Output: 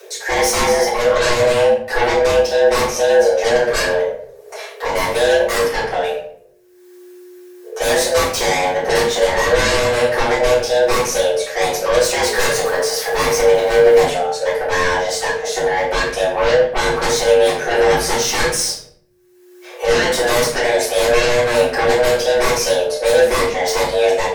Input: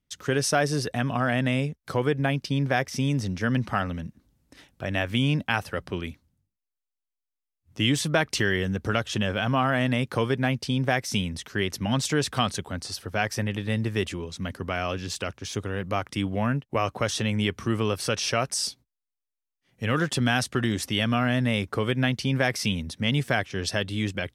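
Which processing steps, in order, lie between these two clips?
12.26–14 zero-crossing step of -36 dBFS; bell 1300 Hz +8.5 dB 0.33 oct; frequency shift +360 Hz; upward compressor, threshold -34 dBFS; sine folder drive 15 dB, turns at -7.5 dBFS; bell 3500 Hz -4.5 dB 1.5 oct; shoebox room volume 76 m³, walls mixed, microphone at 3.4 m; gain -17 dB

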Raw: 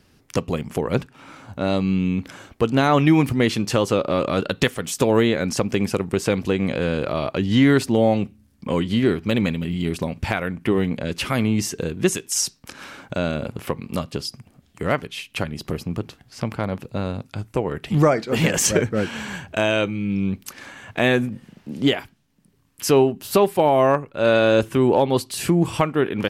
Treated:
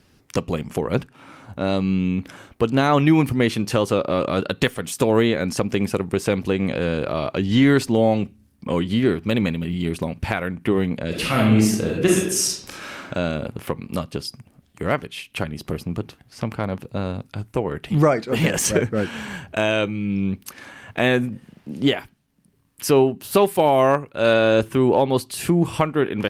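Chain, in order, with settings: 11.08–13.06 reverb throw, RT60 0.8 s, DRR -3 dB; 23.36–24.34 high shelf 2700 Hz +6 dB; Opus 48 kbps 48000 Hz

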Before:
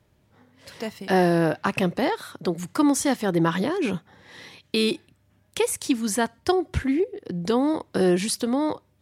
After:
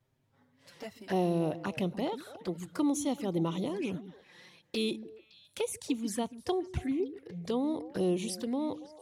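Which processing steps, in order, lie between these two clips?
envelope flanger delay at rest 7.8 ms, full sweep at -20.5 dBFS; delay with a stepping band-pass 0.141 s, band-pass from 230 Hz, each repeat 1.4 oct, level -10 dB; gain -8.5 dB

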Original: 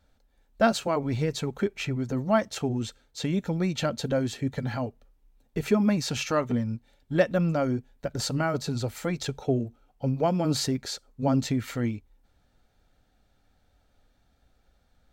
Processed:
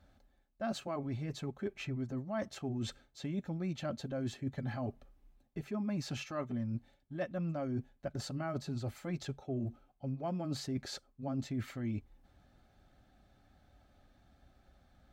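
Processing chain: reverse; compressor 6:1, threshold -39 dBFS, peak gain reduction 21 dB; reverse; high shelf 3700 Hz -8 dB; notch comb 470 Hz; gain +4 dB

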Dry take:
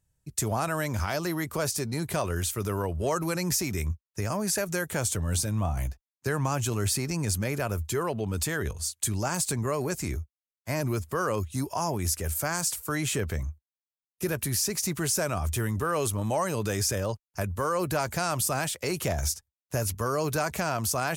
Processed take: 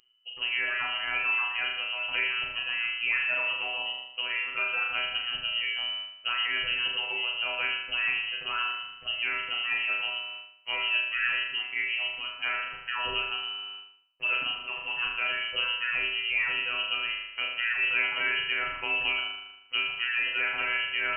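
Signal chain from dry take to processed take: robotiser 119 Hz; flutter echo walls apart 6.7 m, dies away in 0.92 s; reverse; upward compressor, threshold -33 dBFS; reverse; inverted band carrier 3000 Hz

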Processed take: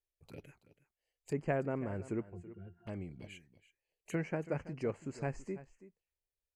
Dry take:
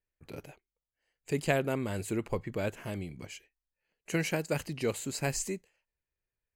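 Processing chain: treble ducked by the level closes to 2300 Hz, closed at -30 dBFS; 2.23–2.87 octave resonator F, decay 0.15 s; envelope phaser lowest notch 210 Hz, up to 3700 Hz, full sweep at -35 dBFS; echo 0.329 s -16.5 dB; gain -4.5 dB

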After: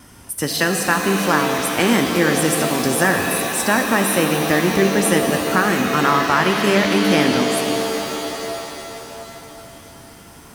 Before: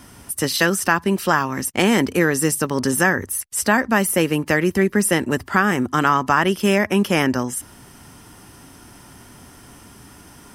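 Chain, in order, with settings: wow and flutter 21 cents; shimmer reverb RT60 3.6 s, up +7 st, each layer -2 dB, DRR 4.5 dB; gain -1 dB

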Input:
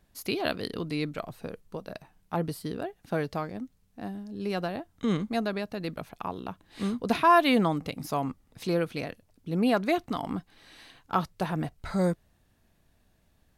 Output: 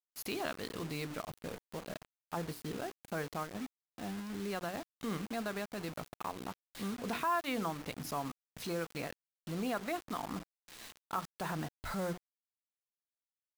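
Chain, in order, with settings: expander -52 dBFS; notches 60/120/180/240/300/360/420/480 Hz; dynamic EQ 1300 Hz, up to +7 dB, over -43 dBFS, Q 0.93; transient shaper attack -7 dB, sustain -3 dB; compressor 2.5:1, threshold -41 dBFS, peak gain reduction 19 dB; bit-crush 8-bit; gain +1.5 dB

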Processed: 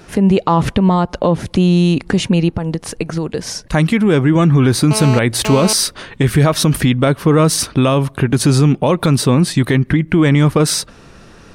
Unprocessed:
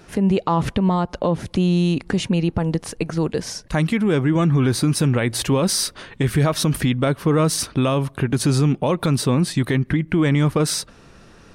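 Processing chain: 2.48–3.63 compressor, threshold -22 dBFS, peak gain reduction 6.5 dB; 4.91–5.73 GSM buzz -27 dBFS; gain +6 dB

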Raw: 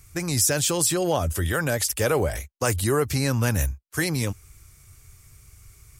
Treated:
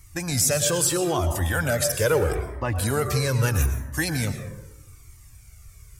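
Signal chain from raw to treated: 2.35–2.76 air absorption 390 m; plate-style reverb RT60 1.1 s, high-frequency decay 0.4×, pre-delay 95 ms, DRR 7.5 dB; cascading flanger falling 0.78 Hz; gain +4 dB

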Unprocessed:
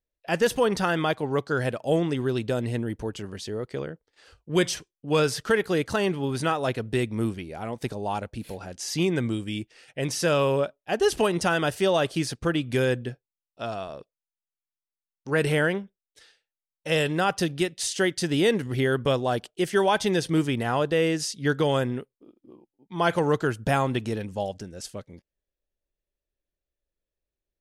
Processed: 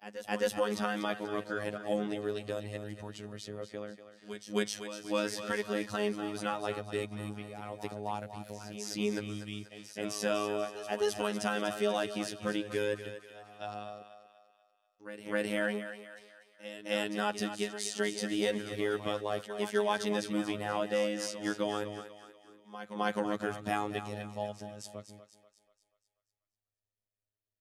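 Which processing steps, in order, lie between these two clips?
frequency shift +25 Hz; pre-echo 0.262 s -12.5 dB; robotiser 104 Hz; on a send: thinning echo 0.242 s, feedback 47%, high-pass 400 Hz, level -10 dB; on the sum: gain -6.5 dB

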